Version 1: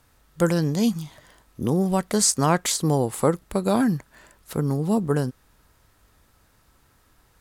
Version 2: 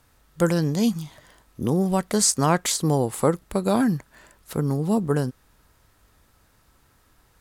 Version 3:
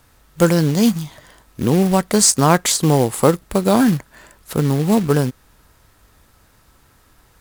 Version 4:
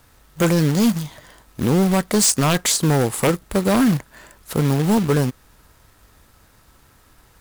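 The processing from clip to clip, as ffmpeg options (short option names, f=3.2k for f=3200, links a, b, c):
-af anull
-af "acrusher=bits=4:mode=log:mix=0:aa=0.000001,volume=6.5dB"
-af "aeval=exprs='0.355*(abs(mod(val(0)/0.355+3,4)-2)-1)':c=same,acrusher=bits=3:mode=log:mix=0:aa=0.000001"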